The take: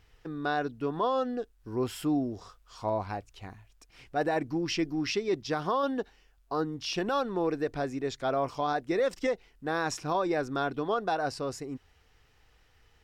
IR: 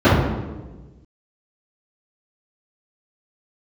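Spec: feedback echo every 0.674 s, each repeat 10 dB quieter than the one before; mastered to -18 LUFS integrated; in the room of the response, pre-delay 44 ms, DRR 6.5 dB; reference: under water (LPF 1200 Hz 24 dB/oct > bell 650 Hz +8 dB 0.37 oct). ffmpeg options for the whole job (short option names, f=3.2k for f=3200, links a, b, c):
-filter_complex "[0:a]aecho=1:1:674|1348|2022|2696:0.316|0.101|0.0324|0.0104,asplit=2[a][b];[1:a]atrim=start_sample=2205,adelay=44[c];[b][c]afir=irnorm=-1:irlink=0,volume=-33.5dB[d];[a][d]amix=inputs=2:normalize=0,lowpass=f=1.2k:w=0.5412,lowpass=f=1.2k:w=1.3066,equalizer=f=650:t=o:w=0.37:g=8,volume=8.5dB"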